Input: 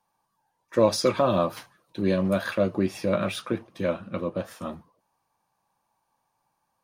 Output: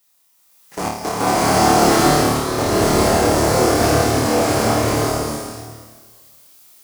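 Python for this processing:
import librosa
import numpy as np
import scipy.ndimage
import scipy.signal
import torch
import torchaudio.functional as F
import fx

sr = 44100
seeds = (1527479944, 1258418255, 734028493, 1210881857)

p1 = fx.cycle_switch(x, sr, every=2, mode='inverted')
p2 = fx.transient(p1, sr, attack_db=5, sustain_db=-2)
p3 = fx.band_shelf(p2, sr, hz=7500.0, db=11.0, octaves=1.7)
p4 = fx.over_compress(p3, sr, threshold_db=-23.0, ratio=-0.5)
p5 = p3 + F.gain(torch.from_numpy(p4), -0.5).numpy()
p6 = fx.low_shelf(p5, sr, hz=330.0, db=7.0)
p7 = fx.tube_stage(p6, sr, drive_db=15.0, bias=0.6)
p8 = fx.dmg_noise_colour(p7, sr, seeds[0], colour='blue', level_db=-50.0)
p9 = fx.level_steps(p8, sr, step_db=20)
p10 = fx.highpass(p9, sr, hz=120.0, slope=6)
p11 = p10 + fx.room_flutter(p10, sr, wall_m=4.6, rt60_s=0.62, dry=0)
p12 = fx.rev_bloom(p11, sr, seeds[1], attack_ms=770, drr_db=-11.5)
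y = F.gain(torch.from_numpy(p12), -3.5).numpy()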